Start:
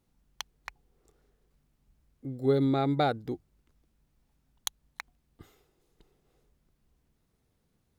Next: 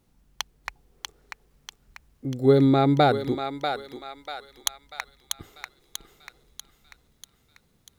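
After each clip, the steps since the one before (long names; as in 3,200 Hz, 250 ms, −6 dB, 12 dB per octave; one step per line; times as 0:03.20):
feedback echo with a high-pass in the loop 641 ms, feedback 55%, high-pass 910 Hz, level −4 dB
level +7.5 dB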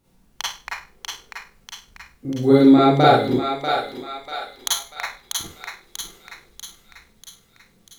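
four-comb reverb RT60 0.33 s, combs from 33 ms, DRR −7 dB
level −1 dB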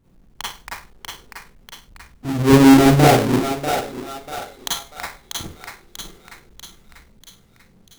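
each half-wave held at its own peak
low-shelf EQ 440 Hz +7.5 dB
level −6 dB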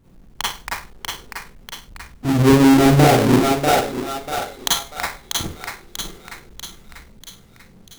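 downward compressor 10 to 1, threshold −14 dBFS, peak gain reduction 9 dB
level +5.5 dB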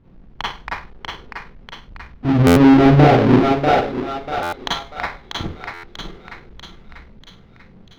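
high-frequency loss of the air 270 metres
buffer that repeats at 0:02.46/0:04.42/0:05.73, samples 512, times 8
level +2.5 dB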